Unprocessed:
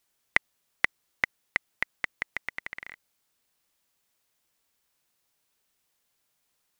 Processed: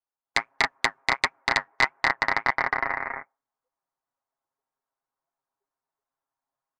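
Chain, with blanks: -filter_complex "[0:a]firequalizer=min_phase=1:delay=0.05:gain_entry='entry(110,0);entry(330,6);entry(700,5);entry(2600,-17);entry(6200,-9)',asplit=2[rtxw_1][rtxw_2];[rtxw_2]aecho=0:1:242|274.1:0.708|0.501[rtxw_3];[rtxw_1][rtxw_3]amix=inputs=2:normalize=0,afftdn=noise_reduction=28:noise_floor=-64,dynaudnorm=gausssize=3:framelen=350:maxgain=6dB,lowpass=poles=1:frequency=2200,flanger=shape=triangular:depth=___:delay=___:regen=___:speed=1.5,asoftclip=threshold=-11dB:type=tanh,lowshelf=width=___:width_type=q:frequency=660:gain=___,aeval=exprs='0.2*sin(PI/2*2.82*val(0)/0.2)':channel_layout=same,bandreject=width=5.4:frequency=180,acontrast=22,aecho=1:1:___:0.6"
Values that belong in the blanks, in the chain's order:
5.7, 5.1, -54, 1.5, -8.5, 7.4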